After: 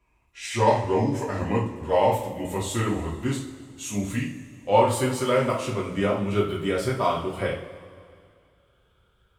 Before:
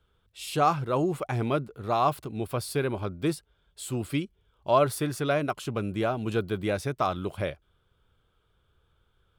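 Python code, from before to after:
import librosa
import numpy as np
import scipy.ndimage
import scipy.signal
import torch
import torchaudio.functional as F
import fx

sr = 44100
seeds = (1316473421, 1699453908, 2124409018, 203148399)

y = fx.pitch_glide(x, sr, semitones=-5.5, runs='ending unshifted')
y = fx.low_shelf(y, sr, hz=68.0, db=-6.0)
y = fx.rev_double_slope(y, sr, seeds[0], early_s=0.39, late_s=2.3, knee_db=-17, drr_db=-5.0)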